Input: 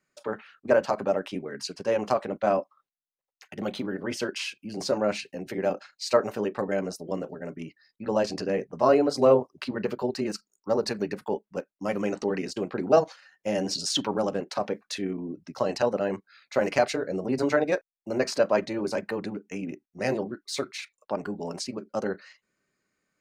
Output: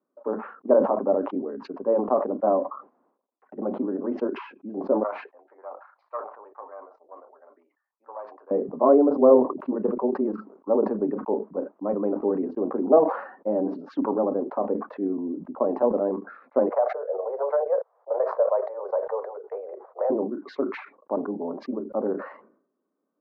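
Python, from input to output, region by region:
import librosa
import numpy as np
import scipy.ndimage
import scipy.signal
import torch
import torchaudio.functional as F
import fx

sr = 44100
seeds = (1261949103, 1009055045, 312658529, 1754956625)

y = fx.chain(x, sr, fx.self_delay(depth_ms=0.23),
    fx.ladder_highpass(hz=770.0, resonance_pct=25),
    fx.notch(hz=2700.0, q=19.0), at=(5.03, 8.51))
y = fx.chain(y, sr, fx.steep_highpass(hz=470.0, slope=72),
    fx.peak_eq(hz=2700.0, db=-12.5, octaves=0.55),
    fx.band_squash(depth_pct=70), at=(16.69, 20.1))
y = scipy.signal.sosfilt(scipy.signal.ellip(3, 1.0, 80, [250.0, 1100.0], 'bandpass', fs=sr, output='sos'), y)
y = fx.low_shelf(y, sr, hz=390.0, db=9.0)
y = fx.sustainer(y, sr, db_per_s=93.0)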